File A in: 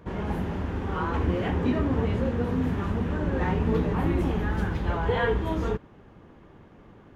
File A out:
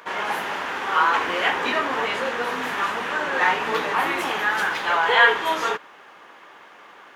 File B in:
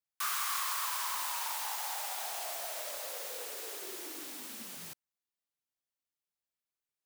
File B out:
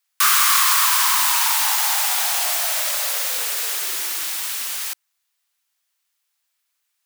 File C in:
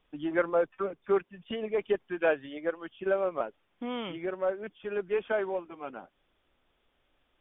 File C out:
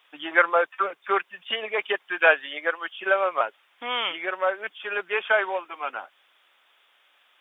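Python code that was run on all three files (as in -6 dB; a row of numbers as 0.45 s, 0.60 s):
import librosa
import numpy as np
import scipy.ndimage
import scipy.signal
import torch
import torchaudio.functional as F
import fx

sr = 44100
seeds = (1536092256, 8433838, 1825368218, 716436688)

y = scipy.signal.sosfilt(scipy.signal.butter(2, 1100.0, 'highpass', fs=sr, output='sos'), x)
y = y * 10.0 ** (-3 / 20.0) / np.max(np.abs(y))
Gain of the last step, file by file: +16.5 dB, +19.0 dB, +15.5 dB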